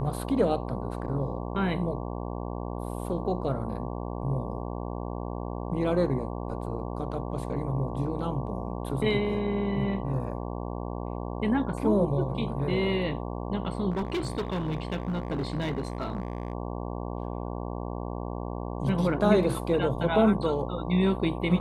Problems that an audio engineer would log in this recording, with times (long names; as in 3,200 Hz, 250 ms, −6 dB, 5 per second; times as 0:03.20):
mains buzz 60 Hz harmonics 19 −34 dBFS
0:13.90–0:16.53: clipping −25.5 dBFS